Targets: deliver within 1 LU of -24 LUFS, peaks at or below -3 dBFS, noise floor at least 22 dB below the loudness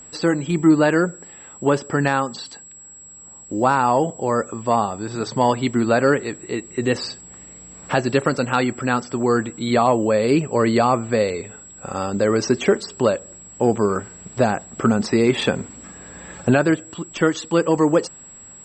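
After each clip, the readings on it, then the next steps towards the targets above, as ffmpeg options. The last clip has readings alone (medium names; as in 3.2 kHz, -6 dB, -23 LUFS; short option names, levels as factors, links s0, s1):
steady tone 7.7 kHz; tone level -40 dBFS; loudness -20.5 LUFS; peak level -4.0 dBFS; loudness target -24.0 LUFS
-> -af "bandreject=f=7700:w=30"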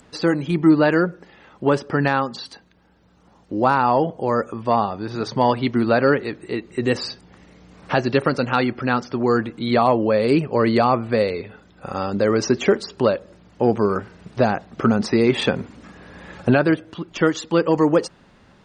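steady tone not found; loudness -20.5 LUFS; peak level -4.0 dBFS; loudness target -24.0 LUFS
-> -af "volume=0.668"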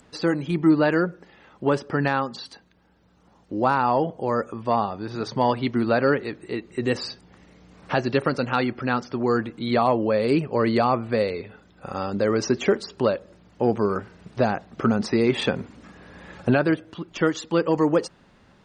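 loudness -24.0 LUFS; peak level -7.5 dBFS; noise floor -57 dBFS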